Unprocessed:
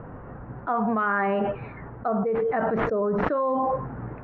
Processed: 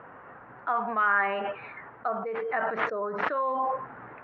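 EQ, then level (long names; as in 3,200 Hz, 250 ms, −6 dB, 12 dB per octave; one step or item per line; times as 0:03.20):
resonant band-pass 1,800 Hz, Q 0.64
high-shelf EQ 2,400 Hz +9 dB
0.0 dB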